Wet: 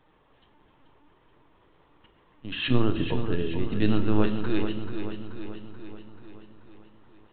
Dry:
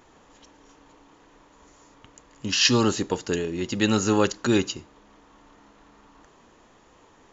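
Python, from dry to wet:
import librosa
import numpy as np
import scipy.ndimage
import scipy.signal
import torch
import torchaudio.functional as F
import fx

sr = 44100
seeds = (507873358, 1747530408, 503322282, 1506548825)

p1 = fx.low_shelf(x, sr, hz=280.0, db=11.5, at=(2.63, 4.23))
p2 = fx.lpc_vocoder(p1, sr, seeds[0], excitation='pitch_kept', order=16)
p3 = p2 + fx.echo_feedback(p2, sr, ms=433, feedback_pct=58, wet_db=-8.5, dry=0)
p4 = fx.room_shoebox(p3, sr, seeds[1], volume_m3=380.0, walls='mixed', distance_m=0.47)
y = p4 * librosa.db_to_amplitude(-8.0)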